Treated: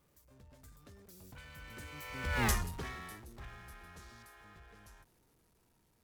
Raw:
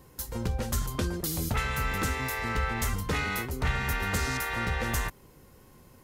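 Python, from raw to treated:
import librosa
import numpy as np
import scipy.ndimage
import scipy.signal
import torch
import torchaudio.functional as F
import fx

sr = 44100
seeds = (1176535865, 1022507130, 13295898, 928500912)

y = x + 0.5 * 10.0 ** (-35.0 / 20.0) * np.sign(x)
y = fx.doppler_pass(y, sr, speed_mps=42, closest_m=2.8, pass_at_s=2.45)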